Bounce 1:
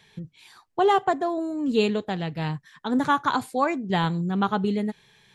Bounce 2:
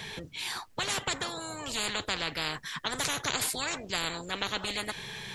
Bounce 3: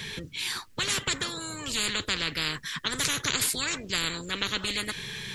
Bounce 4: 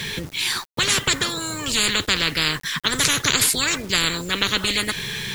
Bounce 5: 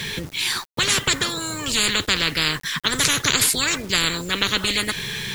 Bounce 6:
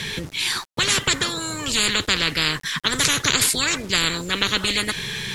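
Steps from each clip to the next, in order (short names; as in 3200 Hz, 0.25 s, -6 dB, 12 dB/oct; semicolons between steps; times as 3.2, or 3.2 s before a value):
spectral compressor 10:1; gain -3 dB
bell 750 Hz -12.5 dB 0.89 oct; gain +4.5 dB
bit-crush 8-bit; gain +8.5 dB
nothing audible
LPF 12000 Hz 12 dB/oct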